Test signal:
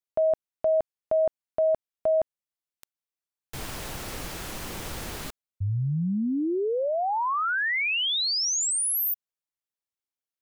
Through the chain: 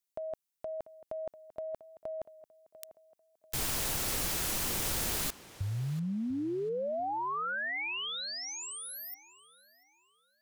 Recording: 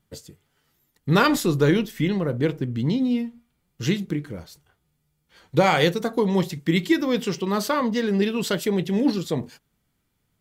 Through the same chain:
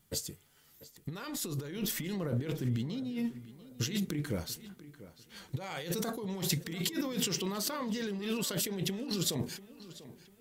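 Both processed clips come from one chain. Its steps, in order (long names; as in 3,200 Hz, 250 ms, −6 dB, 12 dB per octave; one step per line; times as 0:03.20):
high-shelf EQ 4,200 Hz +10.5 dB
compressor whose output falls as the input rises −29 dBFS, ratio −1
on a send: tape delay 693 ms, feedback 39%, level −15 dB, low-pass 4,100 Hz
on the sum: level −6.5 dB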